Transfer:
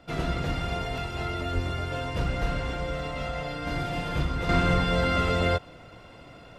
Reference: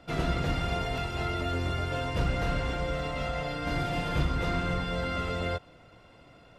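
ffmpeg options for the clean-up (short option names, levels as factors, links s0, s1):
-filter_complex "[0:a]asplit=3[s0][s1][s2];[s0]afade=t=out:st=1.54:d=0.02[s3];[s1]highpass=f=140:w=0.5412,highpass=f=140:w=1.3066,afade=t=in:st=1.54:d=0.02,afade=t=out:st=1.66:d=0.02[s4];[s2]afade=t=in:st=1.66:d=0.02[s5];[s3][s4][s5]amix=inputs=3:normalize=0,asplit=3[s6][s7][s8];[s6]afade=t=out:st=2.41:d=0.02[s9];[s7]highpass=f=140:w=0.5412,highpass=f=140:w=1.3066,afade=t=in:st=2.41:d=0.02,afade=t=out:st=2.53:d=0.02[s10];[s8]afade=t=in:st=2.53:d=0.02[s11];[s9][s10][s11]amix=inputs=3:normalize=0,asetnsamples=n=441:p=0,asendcmd='4.49 volume volume -7dB',volume=1"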